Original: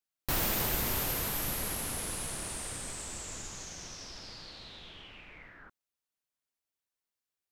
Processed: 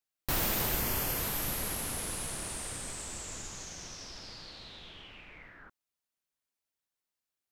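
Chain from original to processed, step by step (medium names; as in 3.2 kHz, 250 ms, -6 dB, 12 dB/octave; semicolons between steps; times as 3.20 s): 0.79–1.19 s: band-stop 3.8 kHz, Q 7.4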